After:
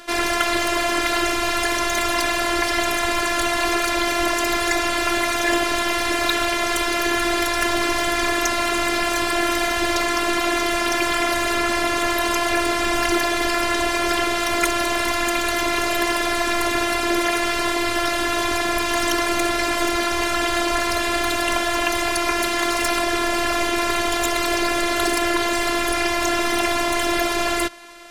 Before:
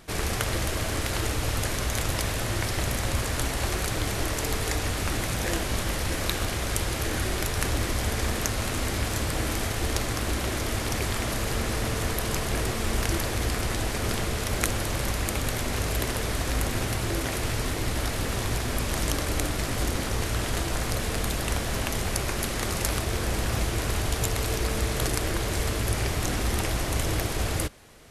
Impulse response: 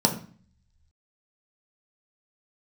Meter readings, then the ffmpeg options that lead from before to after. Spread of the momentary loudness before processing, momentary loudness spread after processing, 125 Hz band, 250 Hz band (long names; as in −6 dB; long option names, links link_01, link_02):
1 LU, 1 LU, −11.5 dB, +8.5 dB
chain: -filter_complex "[0:a]afftfilt=real='hypot(re,im)*cos(PI*b)':imag='0':win_size=512:overlap=0.75,asplit=2[link_01][link_02];[link_02]highpass=frequency=720:poles=1,volume=17dB,asoftclip=type=tanh:threshold=-4dB[link_03];[link_01][link_03]amix=inputs=2:normalize=0,lowpass=frequency=3100:poles=1,volume=-6dB,acontrast=73"